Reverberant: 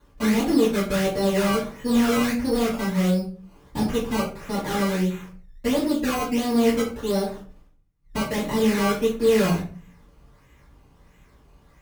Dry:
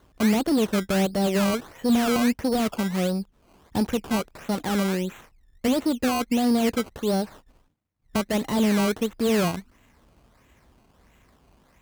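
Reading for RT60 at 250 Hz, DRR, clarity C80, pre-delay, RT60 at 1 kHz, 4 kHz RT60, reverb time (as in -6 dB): 0.60 s, -11.5 dB, 12.5 dB, 3 ms, 0.35 s, 0.25 s, 0.40 s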